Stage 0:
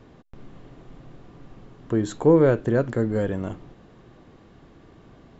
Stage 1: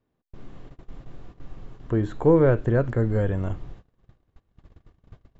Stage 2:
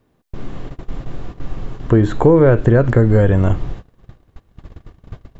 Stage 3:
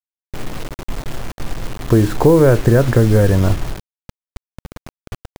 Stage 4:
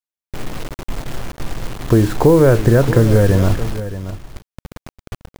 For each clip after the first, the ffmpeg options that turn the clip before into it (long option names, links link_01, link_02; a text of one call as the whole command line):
ffmpeg -i in.wav -filter_complex "[0:a]acrossover=split=2800[link_01][link_02];[link_02]acompressor=threshold=-59dB:ratio=4:attack=1:release=60[link_03];[link_01][link_03]amix=inputs=2:normalize=0,asubboost=boost=5.5:cutoff=100,agate=range=-26dB:threshold=-40dB:ratio=16:detection=peak" out.wav
ffmpeg -i in.wav -filter_complex "[0:a]asplit=2[link_01][link_02];[link_02]alimiter=limit=-15dB:level=0:latency=1,volume=2dB[link_03];[link_01][link_03]amix=inputs=2:normalize=0,acompressor=threshold=-16dB:ratio=3,volume=7.5dB" out.wav
ffmpeg -i in.wav -af "acrusher=bits=4:mix=0:aa=0.000001" out.wav
ffmpeg -i in.wav -af "aecho=1:1:624:0.224" out.wav